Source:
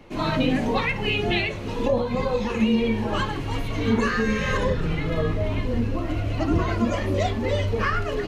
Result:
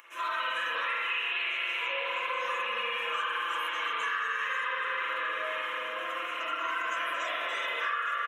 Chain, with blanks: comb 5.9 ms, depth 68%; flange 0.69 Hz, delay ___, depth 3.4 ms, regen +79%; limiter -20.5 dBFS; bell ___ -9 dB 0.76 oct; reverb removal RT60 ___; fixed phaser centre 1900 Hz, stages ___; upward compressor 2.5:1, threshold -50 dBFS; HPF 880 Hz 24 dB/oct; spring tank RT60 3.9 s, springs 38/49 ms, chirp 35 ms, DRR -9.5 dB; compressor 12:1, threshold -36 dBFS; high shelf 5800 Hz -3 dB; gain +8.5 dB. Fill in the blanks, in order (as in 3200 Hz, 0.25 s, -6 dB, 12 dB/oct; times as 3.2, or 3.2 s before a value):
3.1 ms, 2100 Hz, 0.6 s, 4